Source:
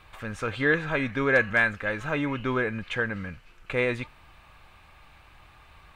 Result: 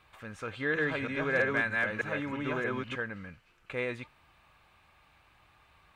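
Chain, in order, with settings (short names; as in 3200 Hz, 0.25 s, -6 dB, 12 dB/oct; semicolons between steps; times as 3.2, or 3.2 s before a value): 0.45–2.96 reverse delay 0.313 s, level 0 dB; HPF 85 Hz 6 dB/oct; gain -8 dB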